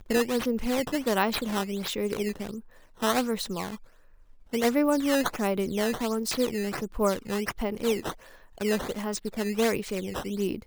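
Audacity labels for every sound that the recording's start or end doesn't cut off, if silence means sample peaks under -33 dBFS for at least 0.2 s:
3.020000	3.750000	sound
4.530000	8.120000	sound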